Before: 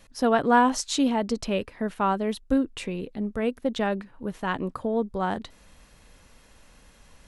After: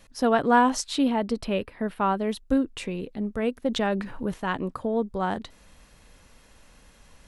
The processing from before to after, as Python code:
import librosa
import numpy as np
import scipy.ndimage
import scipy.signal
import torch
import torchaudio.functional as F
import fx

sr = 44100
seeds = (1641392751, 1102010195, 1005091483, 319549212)

y = fx.peak_eq(x, sr, hz=6600.0, db=-12.5, octaves=0.56, at=(0.84, 2.2))
y = fx.env_flatten(y, sr, amount_pct=50, at=(3.69, 4.34))